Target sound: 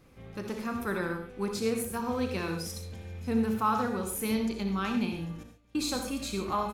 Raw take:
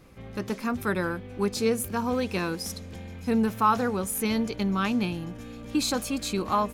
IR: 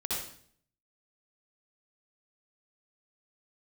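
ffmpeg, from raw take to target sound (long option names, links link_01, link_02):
-filter_complex "[0:a]asettb=1/sr,asplit=3[link_01][link_02][link_03];[link_01]atrim=end=5.434[link_04];[link_02]atrim=start=5.43:end=6.08,asetpts=PTS-STARTPTS,afade=type=in:duration=0.004:curve=qsin,afade=type=out:start_time=0.646:duration=0.004:curve=qsin,agate=range=-33dB:threshold=-28dB:ratio=3:detection=peak[link_05];[link_03]atrim=start=6.076[link_06];[link_04][link_05]acrossfade=duration=0.004:curve1=hsin:curve2=qsin[link_07];[link_07][link_06]acrossfade=duration=0.004:curve1=qsin:curve2=hsin,asplit=2[link_08][link_09];[link_09]adelay=36,volume=-12dB[link_10];[link_08][link_10]amix=inputs=2:normalize=0,asplit=2[link_11][link_12];[1:a]atrim=start_sample=2205,atrim=end_sample=6615[link_13];[link_12][link_13]afir=irnorm=-1:irlink=0,volume=-6dB[link_14];[link_11][link_14]amix=inputs=2:normalize=0,volume=-8.5dB"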